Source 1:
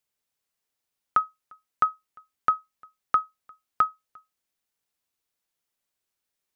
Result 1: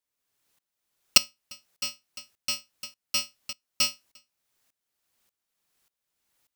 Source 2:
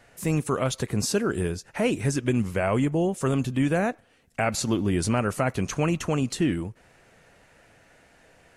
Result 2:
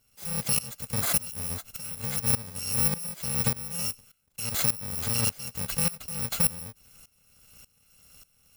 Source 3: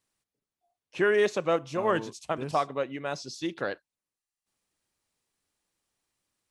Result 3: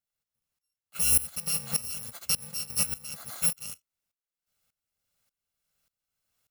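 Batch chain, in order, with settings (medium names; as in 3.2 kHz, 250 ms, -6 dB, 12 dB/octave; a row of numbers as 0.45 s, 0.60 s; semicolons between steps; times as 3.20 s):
bit-reversed sample order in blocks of 128 samples; peak limiter -20 dBFS; sawtooth tremolo in dB swelling 1.7 Hz, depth 20 dB; normalise loudness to -27 LUFS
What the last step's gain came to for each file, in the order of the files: +14.0 dB, +6.5 dB, +8.0 dB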